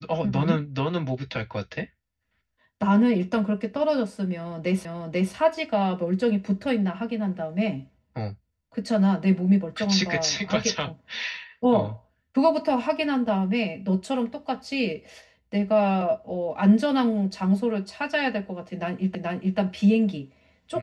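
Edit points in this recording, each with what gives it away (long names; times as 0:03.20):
0:04.85: the same again, the last 0.49 s
0:19.15: the same again, the last 0.43 s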